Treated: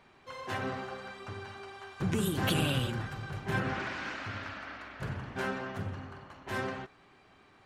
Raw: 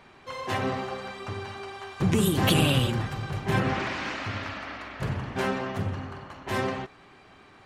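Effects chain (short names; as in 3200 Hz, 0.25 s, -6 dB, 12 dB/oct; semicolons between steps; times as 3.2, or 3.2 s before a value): dynamic EQ 1500 Hz, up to +7 dB, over -51 dBFS, Q 5.4; gain -7.5 dB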